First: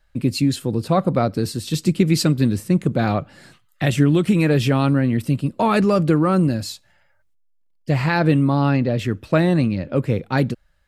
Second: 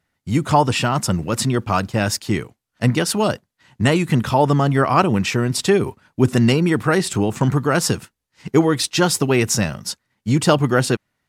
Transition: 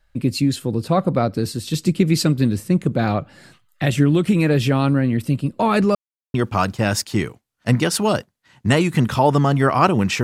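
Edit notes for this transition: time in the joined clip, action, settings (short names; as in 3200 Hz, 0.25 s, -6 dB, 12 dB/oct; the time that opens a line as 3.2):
first
5.95–6.34 mute
6.34 switch to second from 1.49 s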